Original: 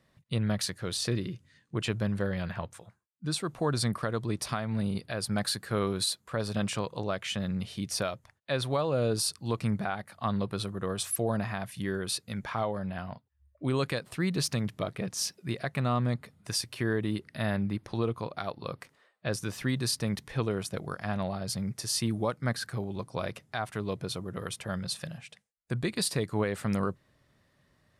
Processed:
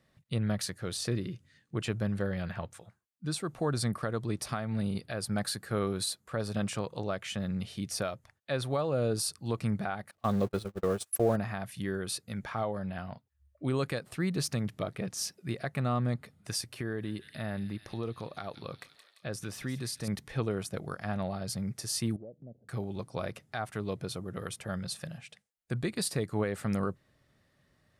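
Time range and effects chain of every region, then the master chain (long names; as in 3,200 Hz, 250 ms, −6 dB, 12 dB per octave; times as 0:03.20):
0:10.11–0:11.36: converter with a step at zero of −37 dBFS + parametric band 450 Hz +5.5 dB 1.4 octaves + noise gate −30 dBFS, range −36 dB
0:16.81–0:20.08: delay with a high-pass on its return 171 ms, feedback 66%, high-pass 3,400 Hz, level −6.5 dB + downward compressor 1.5 to 1, threshold −37 dBFS
0:22.16–0:22.69: Butterworth low-pass 640 Hz 48 dB per octave + downward compressor 2.5 to 1, threshold −46 dBFS + low-shelf EQ 120 Hz −9 dB
whole clip: dynamic equaliser 3,400 Hz, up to −4 dB, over −45 dBFS, Q 0.94; notch filter 1,000 Hz, Q 11; level −1.5 dB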